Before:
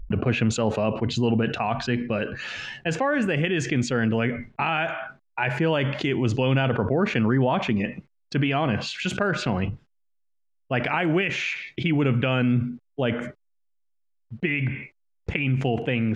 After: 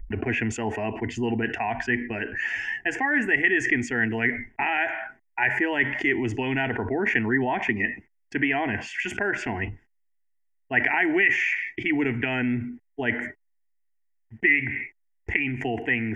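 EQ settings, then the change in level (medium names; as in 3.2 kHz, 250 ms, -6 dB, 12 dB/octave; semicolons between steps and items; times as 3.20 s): peaking EQ 1.9 kHz +15 dB 0.28 oct; static phaser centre 810 Hz, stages 8; 0.0 dB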